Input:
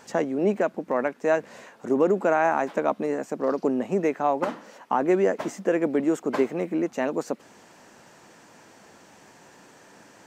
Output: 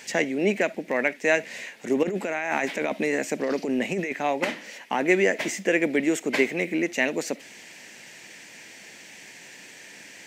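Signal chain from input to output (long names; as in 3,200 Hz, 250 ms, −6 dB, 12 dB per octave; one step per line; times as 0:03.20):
high-pass filter 110 Hz
high shelf with overshoot 1,600 Hz +9 dB, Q 3
0:02.03–0:04.13: compressor whose output falls as the input rises −26 dBFS, ratio −1
convolution reverb, pre-delay 5 ms, DRR 20.5 dB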